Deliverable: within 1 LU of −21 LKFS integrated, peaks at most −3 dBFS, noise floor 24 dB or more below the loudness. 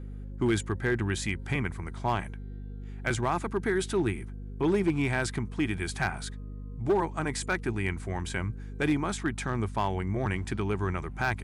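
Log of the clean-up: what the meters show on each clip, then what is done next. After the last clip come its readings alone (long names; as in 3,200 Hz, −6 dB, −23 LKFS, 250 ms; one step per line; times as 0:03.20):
share of clipped samples 0.5%; peaks flattened at −19.0 dBFS; mains hum 50 Hz; hum harmonics up to 250 Hz; level of the hum −37 dBFS; integrated loudness −30.5 LKFS; sample peak −19.0 dBFS; target loudness −21.0 LKFS
→ clipped peaks rebuilt −19 dBFS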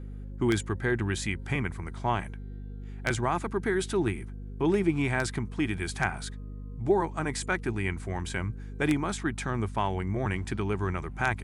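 share of clipped samples 0.0%; mains hum 50 Hz; hum harmonics up to 250 Hz; level of the hum −37 dBFS
→ mains-hum notches 50/100/150/200/250 Hz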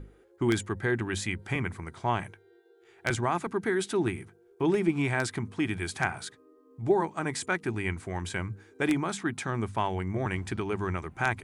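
mains hum none found; integrated loudness −30.5 LKFS; sample peak −9.5 dBFS; target loudness −21.0 LKFS
→ level +9.5 dB
brickwall limiter −3 dBFS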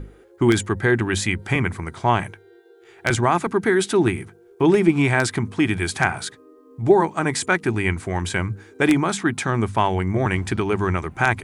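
integrated loudness −21.0 LKFS; sample peak −3.0 dBFS; background noise floor −51 dBFS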